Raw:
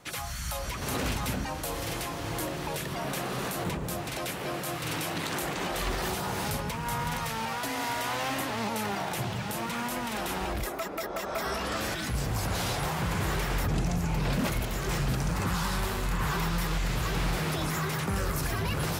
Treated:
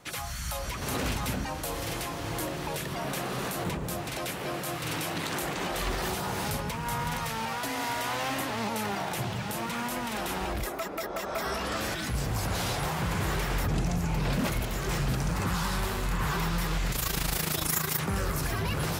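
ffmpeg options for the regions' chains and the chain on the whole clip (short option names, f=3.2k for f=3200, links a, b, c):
-filter_complex "[0:a]asettb=1/sr,asplit=3[a][b][c];[a]atrim=end=16.924[d];[b]atrim=start=16.92:end=17.99,asetpts=PTS-STARTPTS,afade=t=in:d=0.004:c=qsin,afade=t=out:st=1.066:d=0.004:c=qsin,aemphasis=mode=production:type=75kf,tremolo=f=27:d=0.75[e];[c]atrim=start=17.986[f];[d][e]acrossfade=d=0.004:c1=hsin:c2=qsin[g];[g][f]acrossfade=d=0.004:c1=qsin:c2=hsin"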